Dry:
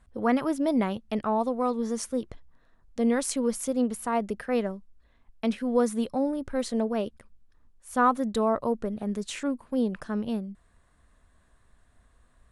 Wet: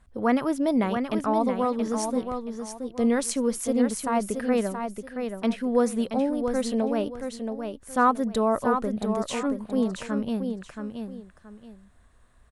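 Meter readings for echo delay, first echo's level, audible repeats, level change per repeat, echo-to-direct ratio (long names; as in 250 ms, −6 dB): 676 ms, −6.5 dB, 2, −11.5 dB, −6.0 dB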